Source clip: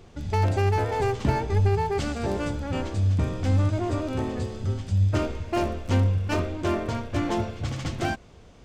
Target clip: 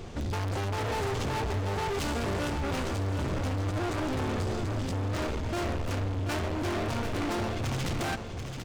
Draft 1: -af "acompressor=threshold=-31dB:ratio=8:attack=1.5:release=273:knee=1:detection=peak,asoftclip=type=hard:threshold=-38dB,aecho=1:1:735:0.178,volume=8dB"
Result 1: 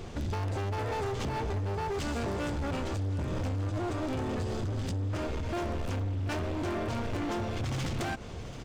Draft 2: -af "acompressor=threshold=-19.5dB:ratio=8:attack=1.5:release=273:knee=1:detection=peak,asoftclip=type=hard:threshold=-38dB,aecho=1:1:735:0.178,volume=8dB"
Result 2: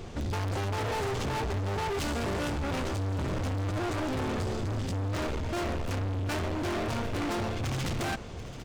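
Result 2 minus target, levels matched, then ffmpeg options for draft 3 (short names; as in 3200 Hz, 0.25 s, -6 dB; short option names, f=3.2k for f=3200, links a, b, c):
echo-to-direct -7 dB
-af "acompressor=threshold=-19.5dB:ratio=8:attack=1.5:release=273:knee=1:detection=peak,asoftclip=type=hard:threshold=-38dB,aecho=1:1:735:0.398,volume=8dB"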